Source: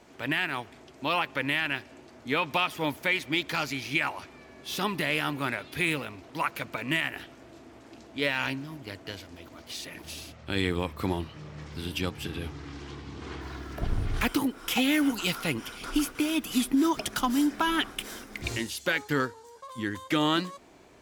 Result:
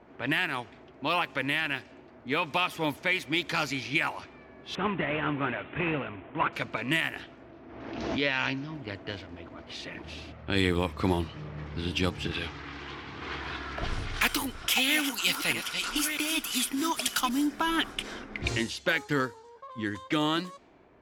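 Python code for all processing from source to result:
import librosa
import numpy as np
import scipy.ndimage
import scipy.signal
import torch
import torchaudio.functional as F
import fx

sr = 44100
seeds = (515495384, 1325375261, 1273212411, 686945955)

y = fx.chain(x, sr, fx.cvsd(bps=16000),
    fx.highpass(hz=54.0, slope=12), at=(4.75, 6.53))
y = fx.chain(y, sr, fx.ellip_lowpass(hz=6100.0, order=4, stop_db=60),
    fx.pre_swell(db_per_s=39.0), at=(7.49, 8.75))
y = fx.chain(y, sr, fx.reverse_delay(ms=644, wet_db=-8.0),
    fx.tilt_shelf(db=-7.5, hz=740.0), at=(12.31, 17.29))
y = fx.env_lowpass(y, sr, base_hz=1700.0, full_db=-25.0)
y = fx.rider(y, sr, range_db=3, speed_s=0.5)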